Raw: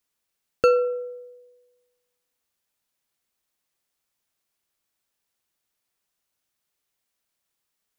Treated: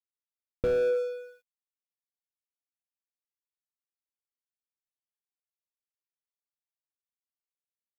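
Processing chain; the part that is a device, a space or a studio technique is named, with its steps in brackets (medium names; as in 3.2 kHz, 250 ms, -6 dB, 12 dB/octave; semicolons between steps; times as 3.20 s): early transistor amplifier (crossover distortion -48.5 dBFS; slew-rate limiter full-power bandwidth 20 Hz); trim +4 dB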